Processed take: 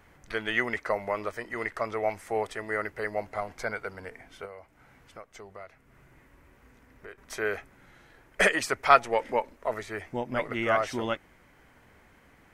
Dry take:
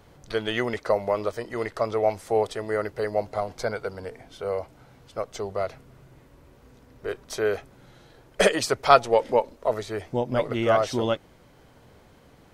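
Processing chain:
graphic EQ with 10 bands 125 Hz −6 dB, 500 Hz −5 dB, 2,000 Hz +9 dB, 4,000 Hz −7 dB
0:04.45–0:07.18: downward compressor 2.5 to 1, threshold −44 dBFS, peak gain reduction 13 dB
level −3 dB

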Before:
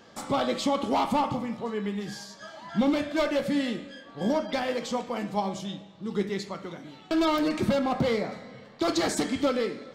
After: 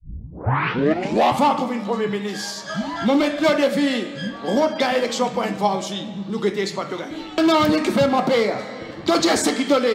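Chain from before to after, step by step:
turntable start at the beginning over 1.13 s
in parallel at +1.5 dB: downward compressor, threshold −37 dBFS, peak gain reduction 16 dB
on the sum: high-pass filter 130 Hz 6 dB per octave
multiband delay without the direct sound lows, highs 270 ms, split 190 Hz
level +7 dB

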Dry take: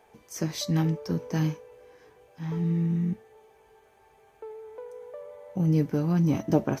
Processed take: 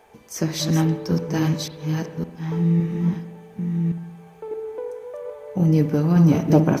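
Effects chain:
delay that plays each chunk backwards 560 ms, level −4 dB
0:04.51–0:04.91: parametric band 310 Hz +12.5 dB 0.77 octaves
spring reverb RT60 1.1 s, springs 59 ms, chirp 45 ms, DRR 10.5 dB
level +6 dB

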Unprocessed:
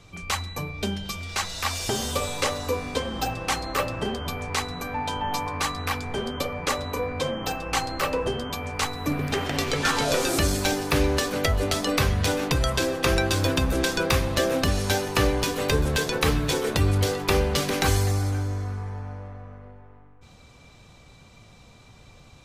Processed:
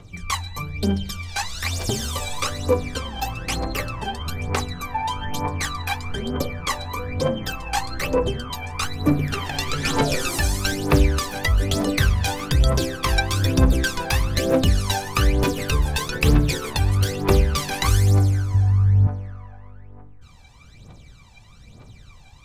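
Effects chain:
0:18.54–0:19.07: parametric band 91 Hz +12 dB 2.7 octaves
phase shifter 1.1 Hz, delay 1.3 ms, feedback 74%
level −2.5 dB

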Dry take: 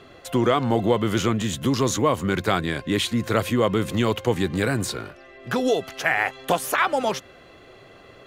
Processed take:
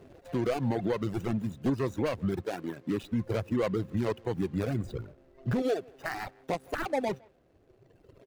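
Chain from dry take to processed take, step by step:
running median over 41 samples
0:01.09–0:01.70: hard clipping −19.5 dBFS, distortion −21 dB
0:02.43–0:03.02: high-pass filter 250 Hz → 110 Hz 12 dB per octave
0:04.84–0:05.62: low-shelf EQ 320 Hz +10 dB
far-end echo of a speakerphone 160 ms, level −16 dB
reverb reduction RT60 2 s
brickwall limiter −19.5 dBFS, peak gain reduction 9 dB
level −1.5 dB

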